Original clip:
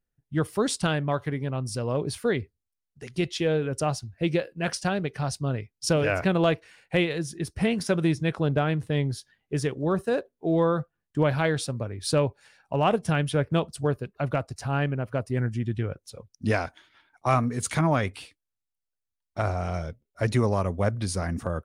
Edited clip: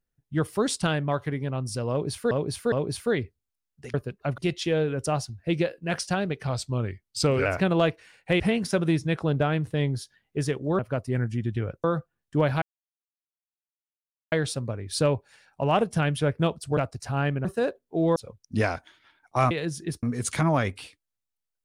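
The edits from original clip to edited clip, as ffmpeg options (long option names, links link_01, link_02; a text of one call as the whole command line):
ffmpeg -i in.wav -filter_complex "[0:a]asplit=16[link_01][link_02][link_03][link_04][link_05][link_06][link_07][link_08][link_09][link_10][link_11][link_12][link_13][link_14][link_15][link_16];[link_01]atrim=end=2.312[link_17];[link_02]atrim=start=1.898:end=2.312[link_18];[link_03]atrim=start=1.898:end=3.122[link_19];[link_04]atrim=start=13.888:end=14.332[link_20];[link_05]atrim=start=3.118:end=5.214[link_21];[link_06]atrim=start=5.21:end=6.1,asetpts=PTS-STARTPTS,asetrate=39690,aresample=44100[link_22];[link_07]atrim=start=6.096:end=7.042[link_23];[link_08]atrim=start=7.558:end=9.952[link_24];[link_09]atrim=start=15.008:end=16.062[link_25];[link_10]atrim=start=10.658:end=11.44,asetpts=PTS-STARTPTS,afade=type=out:start_time=0.778:duration=0.004:curve=hsin,apad=pad_dur=1.7[link_26];[link_11]atrim=start=11.44:end=13.892,asetpts=PTS-STARTPTS,afade=type=in:duration=0.004:curve=hsin[link_27];[link_12]atrim=start=14.328:end=15.012[link_28];[link_13]atrim=start=9.948:end=10.662[link_29];[link_14]atrim=start=16.058:end=17.412[link_30];[link_15]atrim=start=7.038:end=7.562[link_31];[link_16]atrim=start=17.408[link_32];[link_17][link_18]acrossfade=duration=0.004:curve1=hsin:curve2=hsin[link_33];[link_33][link_19]acrossfade=duration=0.004:curve1=hsin:curve2=hsin[link_34];[link_34][link_20]acrossfade=duration=0.004:curve1=hsin:curve2=hsin[link_35];[link_35][link_21]acrossfade=duration=0.004:curve1=hsin:curve2=hsin[link_36];[link_36][link_22]acrossfade=duration=0.004:curve1=hsin:curve2=hsin[link_37];[link_37][link_23]acrossfade=duration=0.004:curve1=hsin:curve2=hsin[link_38];[link_38][link_24]acrossfade=duration=0.004:curve1=hsin:curve2=hsin[link_39];[link_39][link_25]acrossfade=duration=0.004:curve1=hsin:curve2=hsin[link_40];[link_26][link_27]concat=n=2:v=0:a=1[link_41];[link_40][link_41]acrossfade=duration=0.004:curve1=hsin:curve2=hsin[link_42];[link_42][link_28]acrossfade=duration=0.004:curve1=hsin:curve2=hsin[link_43];[link_43][link_29]acrossfade=duration=0.004:curve1=hsin:curve2=hsin[link_44];[link_44][link_30]acrossfade=duration=0.004:curve1=hsin:curve2=hsin[link_45];[link_45][link_31]acrossfade=duration=0.004:curve1=hsin:curve2=hsin[link_46];[link_46][link_32]acrossfade=duration=0.004:curve1=hsin:curve2=hsin" out.wav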